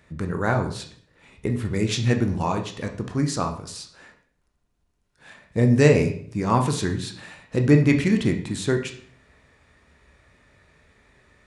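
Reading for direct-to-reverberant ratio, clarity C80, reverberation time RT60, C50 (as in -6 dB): 4.0 dB, 13.0 dB, 0.55 s, 9.5 dB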